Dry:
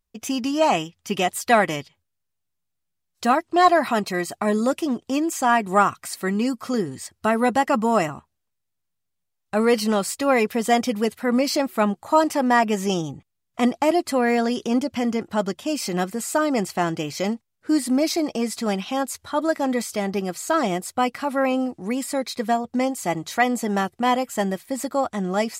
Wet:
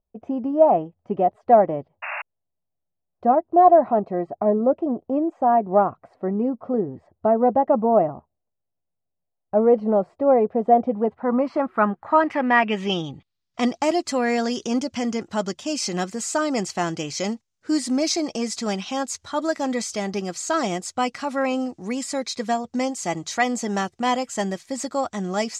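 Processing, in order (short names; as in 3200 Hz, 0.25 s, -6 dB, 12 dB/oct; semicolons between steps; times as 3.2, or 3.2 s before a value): low-pass sweep 660 Hz -> 6500 Hz, 10.8–13.86; painted sound noise, 2.02–2.22, 580–2800 Hz -28 dBFS; gain -2 dB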